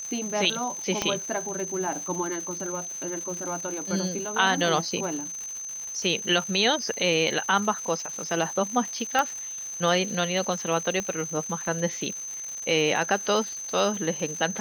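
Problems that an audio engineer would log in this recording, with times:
crackle 320/s -34 dBFS
tone 6200 Hz -33 dBFS
1.02 pop -10 dBFS
9.19 pop -10 dBFS
11 pop -16 dBFS

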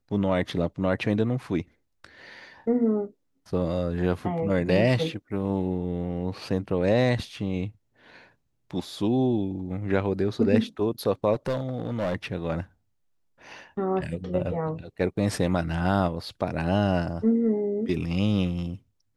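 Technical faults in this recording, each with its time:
11.33–12.16 clipped -22.5 dBFS

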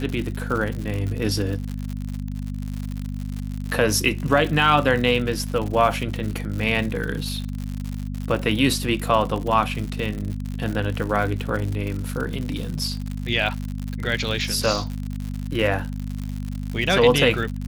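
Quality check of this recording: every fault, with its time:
crackle 110/s -27 dBFS
hum 50 Hz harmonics 5 -29 dBFS

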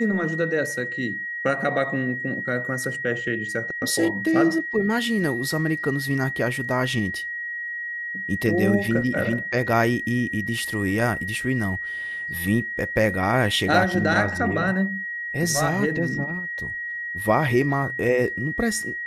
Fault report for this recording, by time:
tone 1900 Hz -28 dBFS

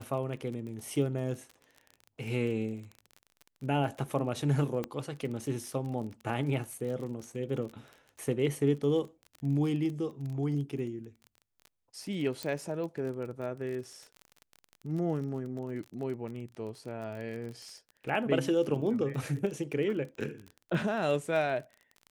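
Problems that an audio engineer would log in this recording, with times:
crackle 27/s -38 dBFS
4.84 pop -20 dBFS
12.43 pop -20 dBFS

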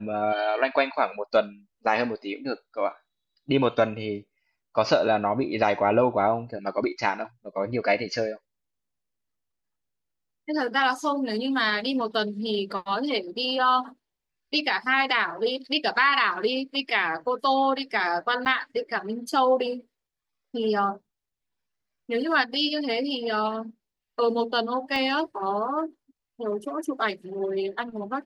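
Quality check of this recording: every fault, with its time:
18.45–18.46 gap 9.3 ms
24.96 pop -17 dBFS

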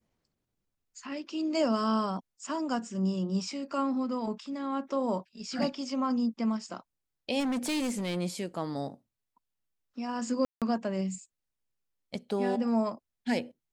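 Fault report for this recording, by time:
7.39–8.17 clipped -27.5 dBFS
10.45–10.62 gap 0.167 s

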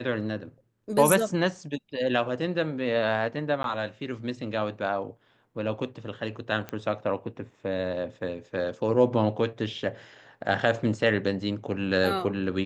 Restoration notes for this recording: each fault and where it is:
3.63–3.64 gap 12 ms
6.69 pop -19 dBFS

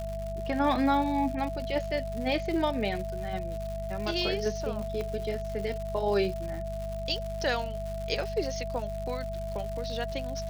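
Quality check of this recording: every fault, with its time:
crackle 210/s -36 dBFS
hum 50 Hz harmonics 4 -37 dBFS
tone 660 Hz -35 dBFS
5.01 pop -22 dBFS

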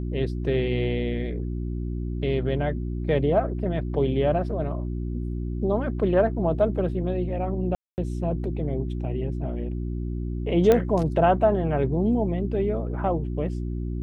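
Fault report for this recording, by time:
hum 60 Hz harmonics 6 -29 dBFS
7.75–7.98 gap 0.229 s
10.72 pop -8 dBFS

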